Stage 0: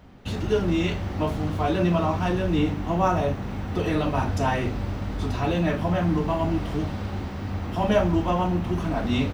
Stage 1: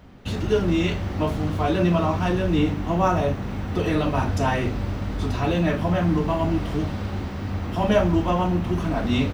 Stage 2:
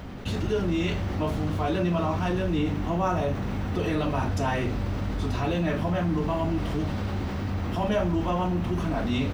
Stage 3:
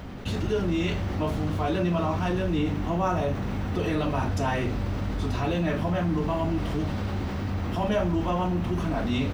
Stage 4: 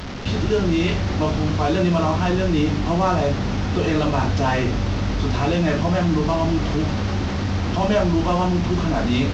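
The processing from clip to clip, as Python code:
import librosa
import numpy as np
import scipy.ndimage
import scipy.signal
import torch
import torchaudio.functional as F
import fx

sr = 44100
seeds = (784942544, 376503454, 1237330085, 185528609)

y1 = fx.peak_eq(x, sr, hz=810.0, db=-2.0, octaves=0.43)
y1 = F.gain(torch.from_numpy(y1), 2.0).numpy()
y2 = fx.env_flatten(y1, sr, amount_pct=50)
y2 = F.gain(torch.from_numpy(y2), -7.5).numpy()
y3 = y2
y4 = fx.delta_mod(y3, sr, bps=32000, step_db=-33.5)
y4 = F.gain(torch.from_numpy(y4), 6.5).numpy()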